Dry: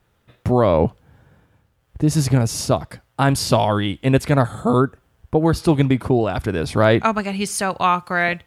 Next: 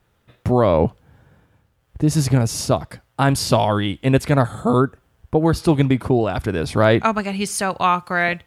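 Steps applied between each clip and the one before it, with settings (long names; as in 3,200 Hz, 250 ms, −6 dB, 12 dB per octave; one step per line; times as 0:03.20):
no processing that can be heard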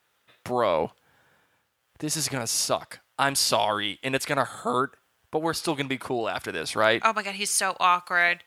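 high-pass filter 1,500 Hz 6 dB per octave
level +1.5 dB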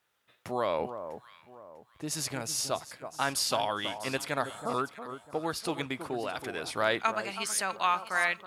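delay that swaps between a low-pass and a high-pass 324 ms, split 1,300 Hz, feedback 55%, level −9.5 dB
level −6.5 dB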